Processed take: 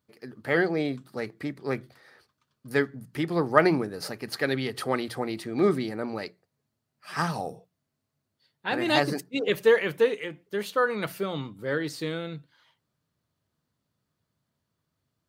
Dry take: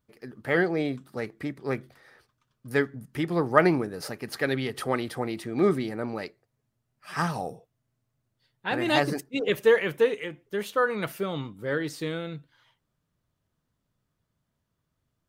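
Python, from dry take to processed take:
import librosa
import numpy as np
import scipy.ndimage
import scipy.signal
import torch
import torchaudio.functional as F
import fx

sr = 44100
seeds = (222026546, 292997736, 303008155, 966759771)

y = scipy.signal.sosfilt(scipy.signal.butter(2, 76.0, 'highpass', fs=sr, output='sos'), x)
y = fx.peak_eq(y, sr, hz=4400.0, db=5.5, octaves=0.28)
y = fx.hum_notches(y, sr, base_hz=60, count=3)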